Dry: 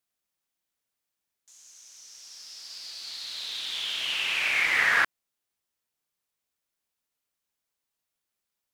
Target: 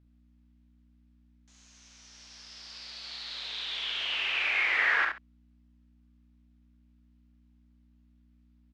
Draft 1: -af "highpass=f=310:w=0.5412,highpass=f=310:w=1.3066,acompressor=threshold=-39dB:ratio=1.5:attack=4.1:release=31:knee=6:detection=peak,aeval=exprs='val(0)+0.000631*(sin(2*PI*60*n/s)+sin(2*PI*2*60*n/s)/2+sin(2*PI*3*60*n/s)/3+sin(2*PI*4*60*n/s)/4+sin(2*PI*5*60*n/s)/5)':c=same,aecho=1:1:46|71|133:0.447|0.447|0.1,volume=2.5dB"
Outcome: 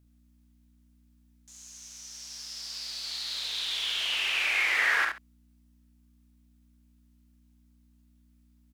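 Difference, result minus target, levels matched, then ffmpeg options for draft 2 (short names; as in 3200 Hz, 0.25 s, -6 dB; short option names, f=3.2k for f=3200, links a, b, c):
4000 Hz band +2.5 dB
-af "highpass=f=310:w=0.5412,highpass=f=310:w=1.3066,acompressor=threshold=-39dB:ratio=1.5:attack=4.1:release=31:knee=6:detection=peak,lowpass=3.3k,aeval=exprs='val(0)+0.000631*(sin(2*PI*60*n/s)+sin(2*PI*2*60*n/s)/2+sin(2*PI*3*60*n/s)/3+sin(2*PI*4*60*n/s)/4+sin(2*PI*5*60*n/s)/5)':c=same,aecho=1:1:46|71|133:0.447|0.447|0.1,volume=2.5dB"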